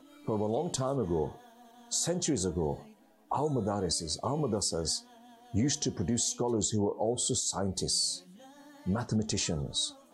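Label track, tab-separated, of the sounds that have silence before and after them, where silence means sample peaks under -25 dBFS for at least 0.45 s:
1.930000	2.720000	sound
3.320000	4.960000	sound
5.550000	8.110000	sound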